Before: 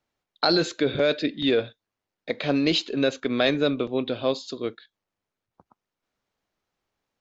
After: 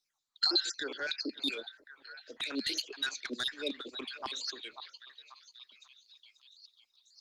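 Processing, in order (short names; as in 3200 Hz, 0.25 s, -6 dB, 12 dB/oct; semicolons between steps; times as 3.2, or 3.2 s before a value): random spectral dropouts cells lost 57%; in parallel at -2 dB: limiter -19.5 dBFS, peak gain reduction 10 dB; on the sum: LFO high-pass saw down 5.4 Hz 810–3400 Hz; compressor 2:1, threshold -27 dBFS, peak gain reduction 6.5 dB; spectral gain 1.36–1.72, 920–2100 Hz -19 dB; steep high-pass 210 Hz 96 dB/oct; high shelf 5900 Hz -10.5 dB; on a send: delay with a stepping band-pass 0.539 s, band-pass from 880 Hz, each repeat 0.7 oct, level -9 dB; on the sum: soft clip -18 dBFS, distortion -22 dB; band shelf 1300 Hz -15.5 dB 3 oct; gain +8 dB; Opus 24 kbps 48000 Hz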